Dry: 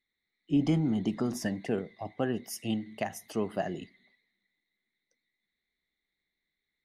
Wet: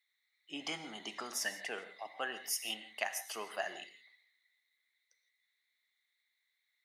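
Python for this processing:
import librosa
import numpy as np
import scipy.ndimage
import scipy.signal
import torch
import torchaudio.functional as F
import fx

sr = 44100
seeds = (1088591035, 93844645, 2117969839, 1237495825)

y = scipy.signal.sosfilt(scipy.signal.butter(2, 1200.0, 'highpass', fs=sr, output='sos'), x)
y = fx.rev_gated(y, sr, seeds[0], gate_ms=190, shape='flat', drr_db=10.5)
y = y * librosa.db_to_amplitude(4.0)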